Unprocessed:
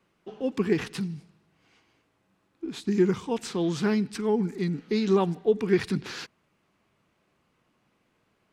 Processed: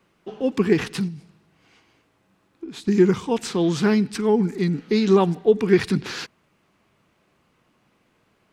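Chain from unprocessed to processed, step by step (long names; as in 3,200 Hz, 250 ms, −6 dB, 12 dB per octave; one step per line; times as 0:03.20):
0:01.08–0:02.88: downward compressor 6 to 1, threshold −38 dBFS, peak gain reduction 8.5 dB
level +6 dB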